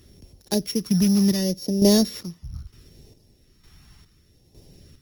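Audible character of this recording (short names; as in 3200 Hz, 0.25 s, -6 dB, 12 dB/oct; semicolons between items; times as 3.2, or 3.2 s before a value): a buzz of ramps at a fixed pitch in blocks of 8 samples; phasing stages 2, 0.71 Hz, lowest notch 470–1300 Hz; chopped level 1.1 Hz, depth 60%, duty 45%; Opus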